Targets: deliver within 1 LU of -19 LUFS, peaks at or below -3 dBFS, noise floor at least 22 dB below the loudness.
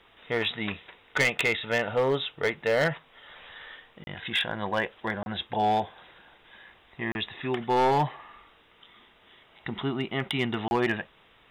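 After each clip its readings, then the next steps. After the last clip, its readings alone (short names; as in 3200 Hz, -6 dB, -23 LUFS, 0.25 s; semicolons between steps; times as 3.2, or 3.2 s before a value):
clipped 0.8%; flat tops at -18.0 dBFS; dropouts 4; longest dropout 31 ms; loudness -28.0 LUFS; peak -18.0 dBFS; loudness target -19.0 LUFS
-> clip repair -18 dBFS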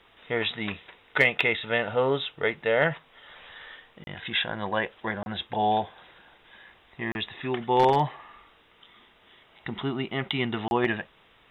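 clipped 0.0%; dropouts 4; longest dropout 31 ms
-> interpolate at 4.04/5.23/7.12/10.68, 31 ms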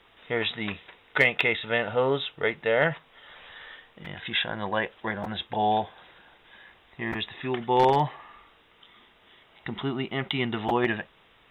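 dropouts 0; loudness -27.0 LUFS; peak -9.0 dBFS; loudness target -19.0 LUFS
-> gain +8 dB; limiter -3 dBFS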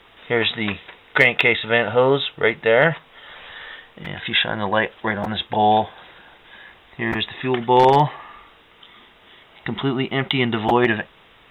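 loudness -19.5 LUFS; peak -3.0 dBFS; noise floor -51 dBFS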